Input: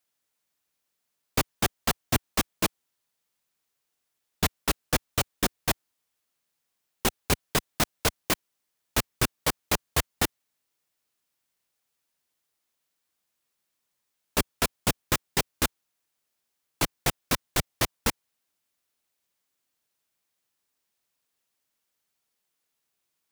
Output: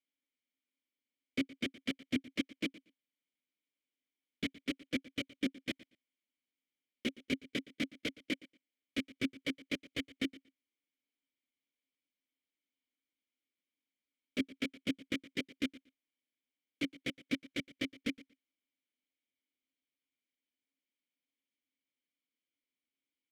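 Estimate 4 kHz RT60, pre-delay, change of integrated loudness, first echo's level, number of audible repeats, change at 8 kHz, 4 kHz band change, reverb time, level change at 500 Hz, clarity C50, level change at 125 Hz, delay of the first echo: no reverb audible, no reverb audible, −11.0 dB, −20.0 dB, 2, −24.5 dB, −10.5 dB, no reverb audible, −13.0 dB, no reverb audible, −18.5 dB, 117 ms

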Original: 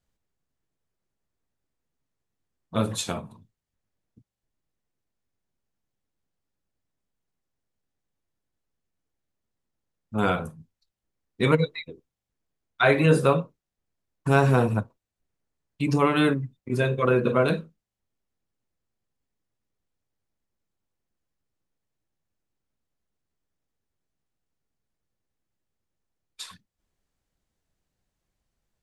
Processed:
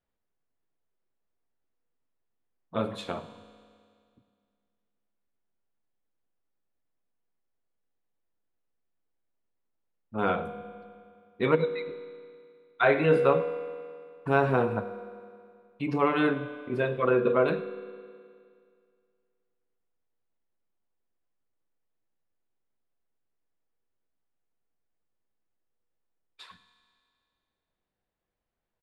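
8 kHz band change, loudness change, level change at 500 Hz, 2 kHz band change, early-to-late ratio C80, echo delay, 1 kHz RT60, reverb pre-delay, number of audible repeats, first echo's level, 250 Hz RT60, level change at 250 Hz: below −20 dB, −3.5 dB, −1.0 dB, −3.0 dB, 12.5 dB, 104 ms, 2.2 s, 4 ms, 1, −19.5 dB, 2.2 s, −5.0 dB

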